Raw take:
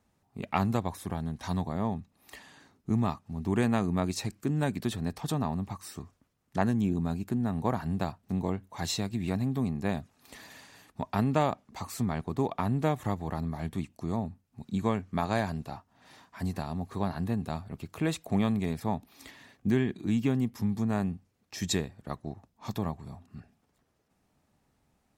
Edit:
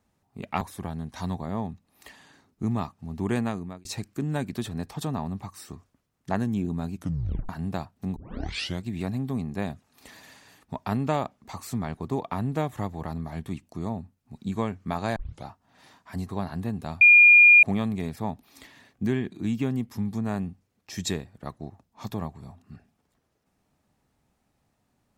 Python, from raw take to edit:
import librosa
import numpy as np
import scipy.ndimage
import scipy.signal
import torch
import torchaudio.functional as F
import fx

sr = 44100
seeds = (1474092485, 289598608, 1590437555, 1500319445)

y = fx.edit(x, sr, fx.cut(start_s=0.61, length_s=0.27),
    fx.fade_out_span(start_s=3.66, length_s=0.46),
    fx.tape_stop(start_s=7.21, length_s=0.55),
    fx.tape_start(start_s=8.43, length_s=0.68),
    fx.tape_start(start_s=15.43, length_s=0.29),
    fx.cut(start_s=16.56, length_s=0.37),
    fx.bleep(start_s=17.65, length_s=0.62, hz=2420.0, db=-10.0), tone=tone)